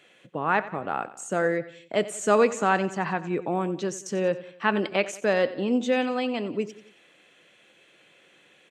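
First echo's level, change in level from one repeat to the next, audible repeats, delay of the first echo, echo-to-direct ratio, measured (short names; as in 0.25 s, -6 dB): -16.0 dB, -6.0 dB, 3, 90 ms, -15.0 dB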